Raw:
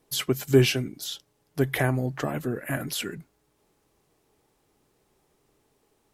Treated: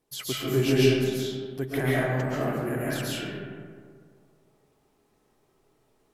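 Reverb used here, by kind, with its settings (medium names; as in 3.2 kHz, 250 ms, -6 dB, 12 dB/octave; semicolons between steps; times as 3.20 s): algorithmic reverb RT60 2 s, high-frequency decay 0.4×, pre-delay 95 ms, DRR -8.5 dB; trim -8.5 dB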